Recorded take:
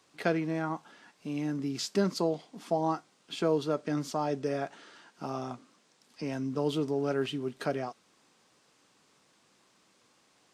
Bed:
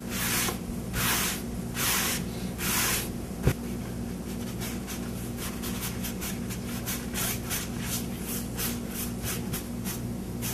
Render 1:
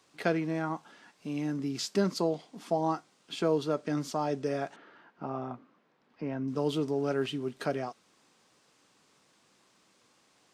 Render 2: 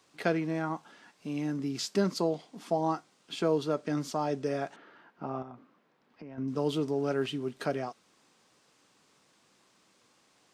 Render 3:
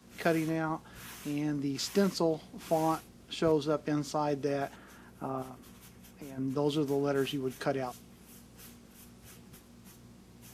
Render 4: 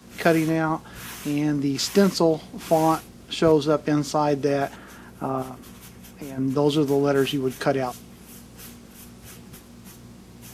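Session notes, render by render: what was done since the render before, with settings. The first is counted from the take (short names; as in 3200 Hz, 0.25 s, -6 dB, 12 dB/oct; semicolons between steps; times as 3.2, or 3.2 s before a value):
4.76–6.48 LPF 1900 Hz
5.42–6.38 compressor, threshold -42 dBFS
add bed -21 dB
gain +9.5 dB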